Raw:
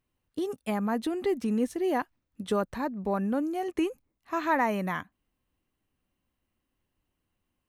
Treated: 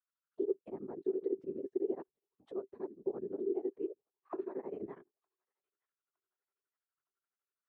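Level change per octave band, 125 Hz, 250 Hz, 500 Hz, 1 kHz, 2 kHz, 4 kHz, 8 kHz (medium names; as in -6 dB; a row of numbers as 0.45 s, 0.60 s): -20.5 dB, -12.0 dB, -6.0 dB, -23.5 dB, under -30 dB, under -30 dB, under -30 dB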